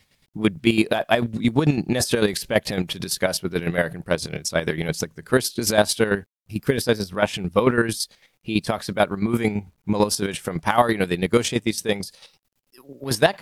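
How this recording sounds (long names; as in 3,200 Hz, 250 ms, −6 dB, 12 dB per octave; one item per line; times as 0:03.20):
chopped level 9 Hz, depth 65%, duty 35%
a quantiser's noise floor 12 bits, dither none
AAC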